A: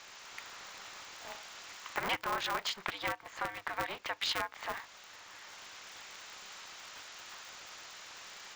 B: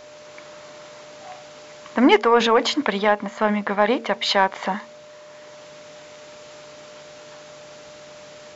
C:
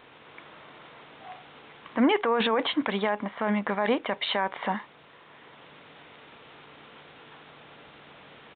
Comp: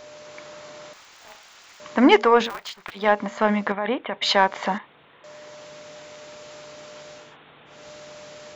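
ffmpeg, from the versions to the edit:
-filter_complex "[0:a]asplit=2[a][b];[2:a]asplit=3[c][d][e];[1:a]asplit=6[f][g][h][i][j][k];[f]atrim=end=0.932[l];[a]atrim=start=0.928:end=1.802[m];[g]atrim=start=1.798:end=2.52[n];[b]atrim=start=2.36:end=3.1[o];[h]atrim=start=2.94:end=3.722[p];[c]atrim=start=3.718:end=4.222[q];[i]atrim=start=4.218:end=4.782[r];[d]atrim=start=4.778:end=5.242[s];[j]atrim=start=5.238:end=7.37[t];[e]atrim=start=7.13:end=7.89[u];[k]atrim=start=7.65[v];[l][m]acrossfade=d=0.004:c1=hsin:c2=hsin[w];[w][n]acrossfade=d=0.004:c1=hsin:c2=hsin[x];[x][o]acrossfade=d=0.16:c1=tri:c2=tri[y];[y][p]acrossfade=d=0.16:c1=tri:c2=tri[z];[z][q]acrossfade=d=0.004:c1=hsin:c2=hsin[aa];[aa][r]acrossfade=d=0.004:c1=hsin:c2=hsin[ab];[ab][s]acrossfade=d=0.004:c1=hsin:c2=hsin[ac];[ac][t]acrossfade=d=0.004:c1=hsin:c2=hsin[ad];[ad][u]acrossfade=d=0.24:c1=tri:c2=tri[ae];[ae][v]acrossfade=d=0.24:c1=tri:c2=tri"

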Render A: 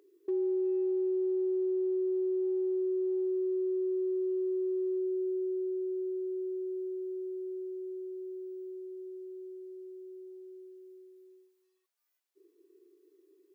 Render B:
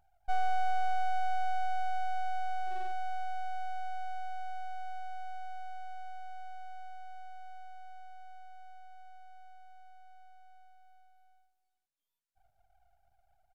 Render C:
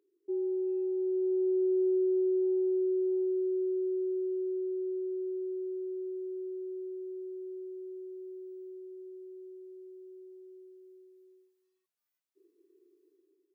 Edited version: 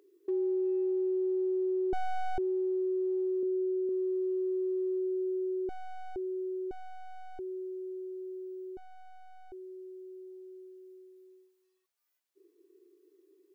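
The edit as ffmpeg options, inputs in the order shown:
-filter_complex "[1:a]asplit=4[a][b][c][d];[0:a]asplit=6[e][f][g][h][i][j];[e]atrim=end=1.932[k];[a]atrim=start=1.928:end=2.382[l];[f]atrim=start=2.378:end=3.432[m];[2:a]atrim=start=3.428:end=3.892[n];[g]atrim=start=3.888:end=5.692[o];[b]atrim=start=5.688:end=6.162[p];[h]atrim=start=6.158:end=6.712[q];[c]atrim=start=6.708:end=7.392[r];[i]atrim=start=7.388:end=8.772[s];[d]atrim=start=8.768:end=9.522[t];[j]atrim=start=9.518[u];[k][l]acrossfade=d=0.004:c1=hsin:c2=hsin[v];[v][m]acrossfade=d=0.004:c1=hsin:c2=hsin[w];[w][n]acrossfade=d=0.004:c1=hsin:c2=hsin[x];[x][o]acrossfade=d=0.004:c1=hsin:c2=hsin[y];[y][p]acrossfade=d=0.004:c1=hsin:c2=hsin[z];[z][q]acrossfade=d=0.004:c1=hsin:c2=hsin[aa];[aa][r]acrossfade=d=0.004:c1=hsin:c2=hsin[ab];[ab][s]acrossfade=d=0.004:c1=hsin:c2=hsin[ac];[ac][t]acrossfade=d=0.004:c1=hsin:c2=hsin[ad];[ad][u]acrossfade=d=0.004:c1=hsin:c2=hsin"

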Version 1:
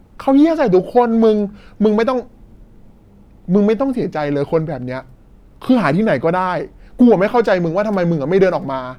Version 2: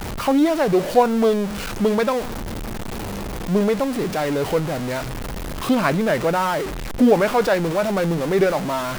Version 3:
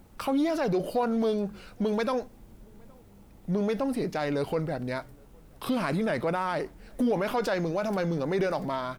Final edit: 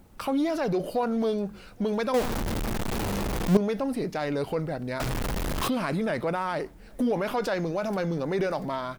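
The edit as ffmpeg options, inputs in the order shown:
-filter_complex "[1:a]asplit=2[a][b];[2:a]asplit=3[c][d][e];[c]atrim=end=2.142[f];[a]atrim=start=2.138:end=3.572[g];[d]atrim=start=3.568:end=5.002[h];[b]atrim=start=4.998:end=5.682[i];[e]atrim=start=5.678[j];[f][g]acrossfade=d=0.004:c1=hsin:c2=hsin[k];[k][h]acrossfade=d=0.004:c1=hsin:c2=hsin[l];[l][i]acrossfade=d=0.004:c1=hsin:c2=hsin[m];[m][j]acrossfade=d=0.004:c1=hsin:c2=hsin"

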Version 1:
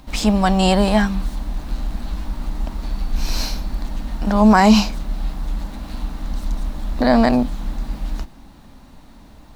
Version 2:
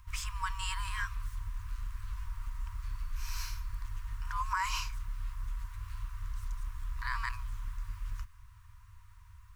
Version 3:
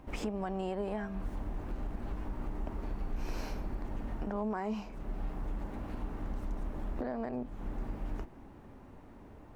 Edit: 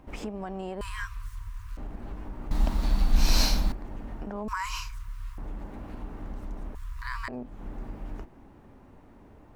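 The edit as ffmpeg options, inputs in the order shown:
-filter_complex "[1:a]asplit=3[a][b][c];[2:a]asplit=5[d][e][f][g][h];[d]atrim=end=0.812[i];[a]atrim=start=0.808:end=1.772[j];[e]atrim=start=1.768:end=2.512[k];[0:a]atrim=start=2.508:end=3.722[l];[f]atrim=start=3.718:end=4.482[m];[b]atrim=start=4.478:end=5.382[n];[g]atrim=start=5.378:end=6.752[o];[c]atrim=start=6.748:end=7.282[p];[h]atrim=start=7.278[q];[i][j]acrossfade=d=0.004:c1=hsin:c2=hsin[r];[r][k]acrossfade=d=0.004:c1=hsin:c2=hsin[s];[s][l]acrossfade=d=0.004:c1=hsin:c2=hsin[t];[t][m]acrossfade=d=0.004:c1=hsin:c2=hsin[u];[u][n]acrossfade=d=0.004:c1=hsin:c2=hsin[v];[v][o]acrossfade=d=0.004:c1=hsin:c2=hsin[w];[w][p]acrossfade=d=0.004:c1=hsin:c2=hsin[x];[x][q]acrossfade=d=0.004:c1=hsin:c2=hsin"

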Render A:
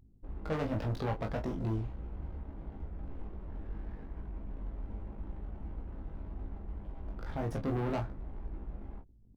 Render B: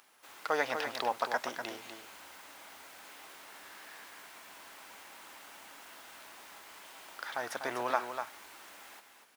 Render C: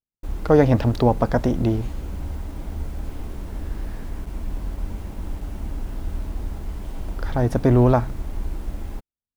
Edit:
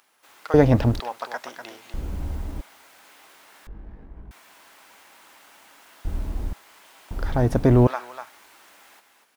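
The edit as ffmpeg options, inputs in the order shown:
-filter_complex "[2:a]asplit=4[a][b][c][d];[1:a]asplit=6[e][f][g][h][i][j];[e]atrim=end=0.542[k];[a]atrim=start=0.538:end=1.002[l];[f]atrim=start=0.998:end=1.942[m];[b]atrim=start=1.938:end=2.612[n];[g]atrim=start=2.608:end=3.672[o];[0:a]atrim=start=3.668:end=4.312[p];[h]atrim=start=4.308:end=6.052[q];[c]atrim=start=6.048:end=6.532[r];[i]atrim=start=6.528:end=7.112[s];[d]atrim=start=7.108:end=7.872[t];[j]atrim=start=7.868[u];[k][l]acrossfade=d=0.004:c1=hsin:c2=hsin[v];[v][m]acrossfade=d=0.004:c1=hsin:c2=hsin[w];[w][n]acrossfade=d=0.004:c1=hsin:c2=hsin[x];[x][o]acrossfade=d=0.004:c1=hsin:c2=hsin[y];[y][p]acrossfade=d=0.004:c1=hsin:c2=hsin[z];[z][q]acrossfade=d=0.004:c1=hsin:c2=hsin[aa];[aa][r]acrossfade=d=0.004:c1=hsin:c2=hsin[ab];[ab][s]acrossfade=d=0.004:c1=hsin:c2=hsin[ac];[ac][t]acrossfade=d=0.004:c1=hsin:c2=hsin[ad];[ad][u]acrossfade=d=0.004:c1=hsin:c2=hsin"

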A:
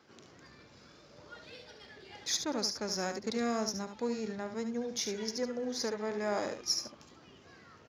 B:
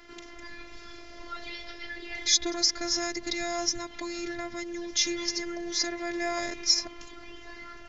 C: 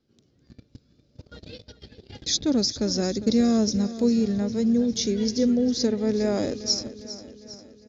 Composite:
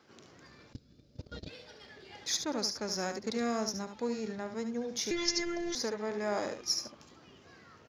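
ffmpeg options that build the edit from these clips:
-filter_complex "[0:a]asplit=3[a][b][c];[a]atrim=end=0.732[d];[2:a]atrim=start=0.728:end=1.492[e];[b]atrim=start=1.488:end=5.112[f];[1:a]atrim=start=5.108:end=5.752[g];[c]atrim=start=5.748[h];[d][e]acrossfade=d=0.004:c1=hsin:c2=hsin[i];[i][f]acrossfade=d=0.004:c1=hsin:c2=hsin[j];[j][g]acrossfade=d=0.004:c1=hsin:c2=hsin[k];[k][h]acrossfade=d=0.004:c1=hsin:c2=hsin"

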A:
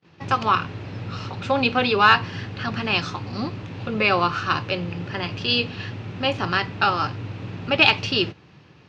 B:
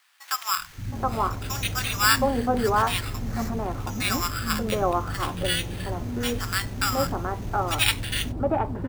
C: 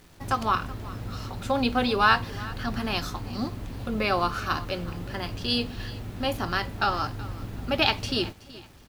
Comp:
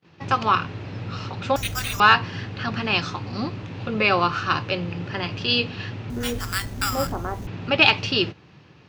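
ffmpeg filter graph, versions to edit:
-filter_complex "[1:a]asplit=2[a][b];[0:a]asplit=3[c][d][e];[c]atrim=end=1.562[f];[a]atrim=start=1.558:end=2.002[g];[d]atrim=start=1.998:end=6.102[h];[b]atrim=start=6.098:end=7.472[i];[e]atrim=start=7.468[j];[f][g]acrossfade=d=0.004:c1=hsin:c2=hsin[k];[k][h]acrossfade=d=0.004:c1=hsin:c2=hsin[l];[l][i]acrossfade=d=0.004:c1=hsin:c2=hsin[m];[m][j]acrossfade=d=0.004:c1=hsin:c2=hsin"

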